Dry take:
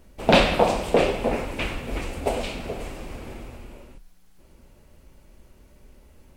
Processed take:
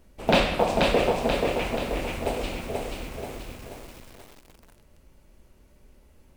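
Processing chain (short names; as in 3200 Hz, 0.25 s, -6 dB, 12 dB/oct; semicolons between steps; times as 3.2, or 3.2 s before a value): block floating point 7-bit; lo-fi delay 0.483 s, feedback 55%, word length 7-bit, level -3 dB; gain -4 dB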